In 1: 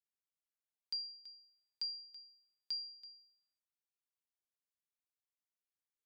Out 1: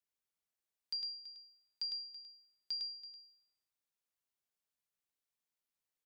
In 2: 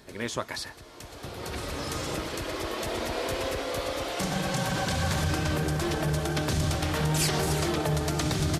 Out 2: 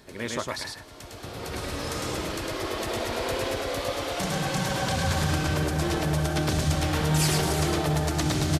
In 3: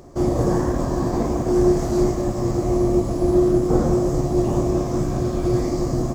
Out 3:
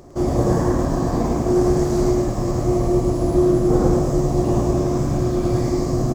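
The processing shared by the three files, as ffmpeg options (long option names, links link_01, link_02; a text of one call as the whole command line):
ffmpeg -i in.wav -af "aecho=1:1:105:0.708" out.wav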